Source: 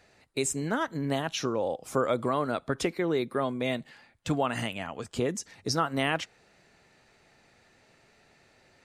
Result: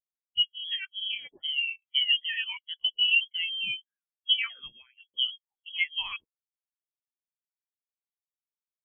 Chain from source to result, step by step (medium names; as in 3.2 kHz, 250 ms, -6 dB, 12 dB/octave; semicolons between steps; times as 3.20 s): sawtooth pitch modulation +11 st, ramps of 642 ms; high-pass 130 Hz 12 dB/octave; frequency inversion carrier 3.5 kHz; spectral contrast expander 2.5:1; trim +2 dB